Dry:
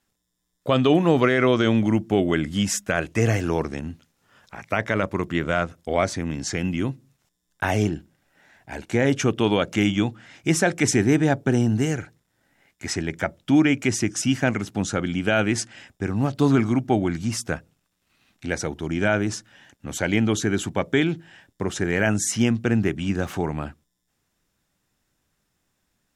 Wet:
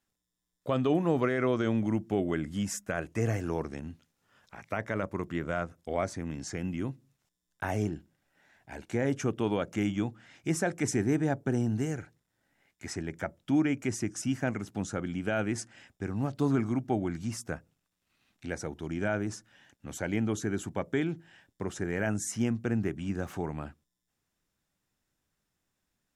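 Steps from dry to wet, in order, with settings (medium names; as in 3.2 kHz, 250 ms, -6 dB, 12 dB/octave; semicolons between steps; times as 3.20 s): dynamic bell 3.4 kHz, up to -8 dB, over -43 dBFS, Q 1; trim -8.5 dB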